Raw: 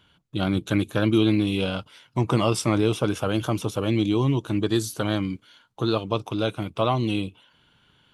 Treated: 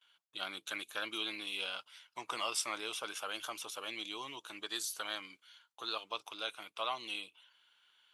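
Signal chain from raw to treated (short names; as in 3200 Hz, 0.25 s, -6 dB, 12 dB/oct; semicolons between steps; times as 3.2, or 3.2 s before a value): gate with hold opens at -52 dBFS; Bessel high-pass 1500 Hz, order 2; gain -5 dB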